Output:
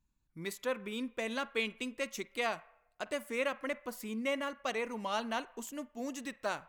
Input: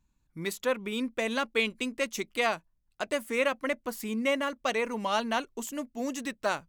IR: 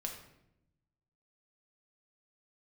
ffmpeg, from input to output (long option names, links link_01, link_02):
-filter_complex "[0:a]asplit=2[link_01][link_02];[link_02]acrossover=split=600 2700:gain=0.0631 1 0.0794[link_03][link_04][link_05];[link_03][link_04][link_05]amix=inputs=3:normalize=0[link_06];[1:a]atrim=start_sample=2205,adelay=49[link_07];[link_06][link_07]afir=irnorm=-1:irlink=0,volume=-13.5dB[link_08];[link_01][link_08]amix=inputs=2:normalize=0,volume=-6.5dB"